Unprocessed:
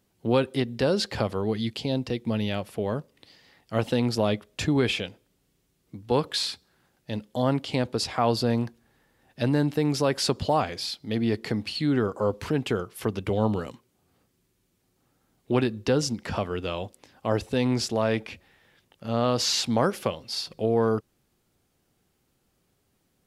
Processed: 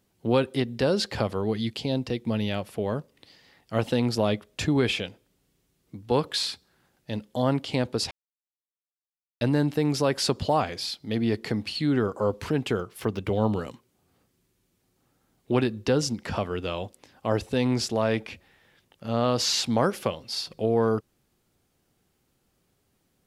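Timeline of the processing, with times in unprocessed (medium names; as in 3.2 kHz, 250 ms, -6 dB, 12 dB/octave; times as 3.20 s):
8.11–9.41 s: mute
12.79–13.53 s: decimation joined by straight lines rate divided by 2×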